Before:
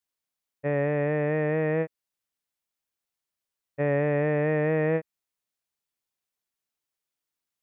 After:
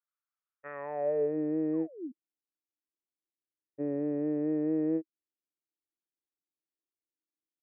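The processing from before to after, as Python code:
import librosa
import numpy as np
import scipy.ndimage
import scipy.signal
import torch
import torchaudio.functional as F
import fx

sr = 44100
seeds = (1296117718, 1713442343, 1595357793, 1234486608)

y = fx.spec_paint(x, sr, seeds[0], shape='fall', start_s=1.73, length_s=0.39, low_hz=230.0, high_hz=1200.0, level_db=-39.0)
y = fx.filter_sweep_bandpass(y, sr, from_hz=1300.0, to_hz=320.0, start_s=0.71, end_s=1.38, q=5.9)
y = y * librosa.db_to_amplitude(4.0)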